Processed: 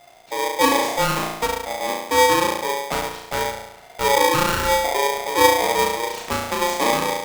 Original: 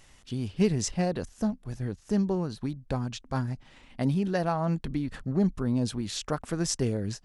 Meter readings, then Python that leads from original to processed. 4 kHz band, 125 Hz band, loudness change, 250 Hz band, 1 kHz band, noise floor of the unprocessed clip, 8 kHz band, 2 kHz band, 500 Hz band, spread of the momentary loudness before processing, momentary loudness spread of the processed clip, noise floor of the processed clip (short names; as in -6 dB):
+15.5 dB, -5.5 dB, +10.0 dB, -1.5 dB, +19.0 dB, -57 dBFS, +11.0 dB, +20.0 dB, +11.5 dB, 9 LU, 10 LU, -46 dBFS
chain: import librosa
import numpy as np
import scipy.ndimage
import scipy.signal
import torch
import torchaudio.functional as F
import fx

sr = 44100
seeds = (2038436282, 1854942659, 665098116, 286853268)

p1 = fx.lowpass(x, sr, hz=2600.0, slope=6)
p2 = fx.sample_hold(p1, sr, seeds[0], rate_hz=2000.0, jitter_pct=0)
p3 = p1 + (p2 * librosa.db_to_amplitude(-4.0))
p4 = fx.room_flutter(p3, sr, wall_m=6.0, rt60_s=0.85)
p5 = p4 * np.sign(np.sin(2.0 * np.pi * 700.0 * np.arange(len(p4)) / sr))
y = p5 * librosa.db_to_amplitude(1.0)